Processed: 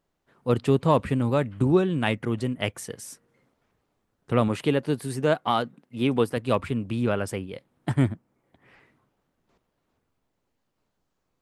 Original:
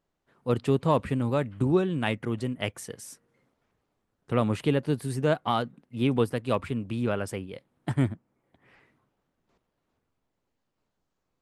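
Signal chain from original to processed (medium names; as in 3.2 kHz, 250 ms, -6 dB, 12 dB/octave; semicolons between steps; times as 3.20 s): 4.48–6.37 s: bass shelf 110 Hz -11 dB; trim +3 dB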